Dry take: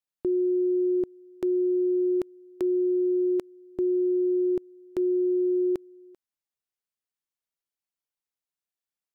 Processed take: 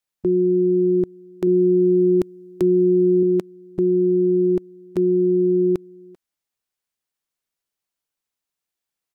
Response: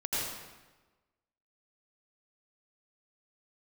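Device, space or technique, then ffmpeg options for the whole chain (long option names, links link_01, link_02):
octave pedal: -filter_complex "[0:a]asettb=1/sr,asplit=3[link_01][link_02][link_03];[link_01]atrim=end=1.474[link_04];[link_02]atrim=start=1.47:end=3.23,asetpts=PTS-STARTPTS,afade=type=in:duration=0.004:curve=qsin,afade=type=out:start_time=1.756:duration=0.004:curve=qsin,bass=frequency=250:gain=8,treble=frequency=4000:gain=4[link_05];[link_03]atrim=start=3.226[link_06];[link_04][link_05]acrossfade=duration=0.004:curve1=hsin:curve2=qsin[link_07];[link_07][link_06]acrossfade=duration=0.004:curve1=qsin:curve2=hsin,asplit=2[link_08][link_09];[link_09]asetrate=22050,aresample=44100,atempo=2,volume=-9dB[link_10];[link_08][link_10]amix=inputs=2:normalize=0,volume=6dB"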